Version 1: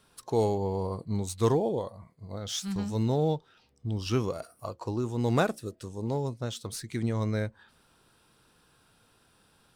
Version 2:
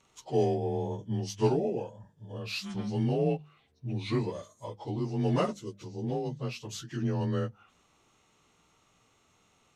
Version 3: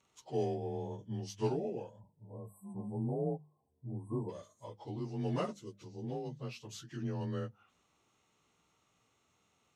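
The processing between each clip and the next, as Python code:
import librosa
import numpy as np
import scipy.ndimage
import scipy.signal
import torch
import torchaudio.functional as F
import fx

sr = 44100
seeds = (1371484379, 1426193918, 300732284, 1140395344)

y1 = fx.partial_stretch(x, sr, pct=90)
y1 = fx.hum_notches(y1, sr, base_hz=50, count=4)
y2 = fx.spec_erase(y1, sr, start_s=2.0, length_s=2.29, low_hz=1100.0, high_hz=7700.0)
y2 = scipy.signal.sosfilt(scipy.signal.butter(2, 52.0, 'highpass', fs=sr, output='sos'), y2)
y2 = y2 * 10.0 ** (-7.5 / 20.0)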